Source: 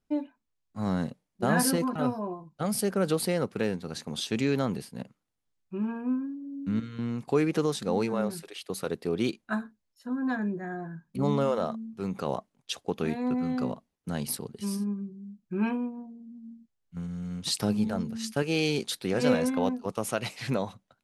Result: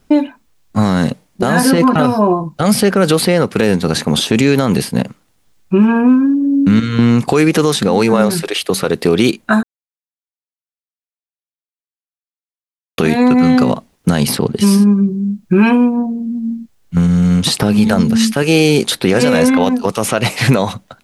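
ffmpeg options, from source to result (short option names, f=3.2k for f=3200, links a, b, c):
-filter_complex "[0:a]asplit=3[a][b][c];[a]atrim=end=9.63,asetpts=PTS-STARTPTS,afade=t=out:st=9.626:d=0.004:c=hsin[d];[b]atrim=start=9.63:end=12.98,asetpts=PTS-STARTPTS,volume=0[e];[c]atrim=start=12.98,asetpts=PTS-STARTPTS,afade=t=in:d=0.004:c=hsin[f];[d][e][f]concat=n=3:v=0:a=1,acrossover=split=1400|3700|7700[g][h][i][j];[g]acompressor=threshold=-33dB:ratio=4[k];[h]acompressor=threshold=-45dB:ratio=4[l];[i]acompressor=threshold=-55dB:ratio=4[m];[j]acompressor=threshold=-52dB:ratio=4[n];[k][l][m][n]amix=inputs=4:normalize=0,alimiter=level_in=26.5dB:limit=-1dB:release=50:level=0:latency=1,volume=-1dB"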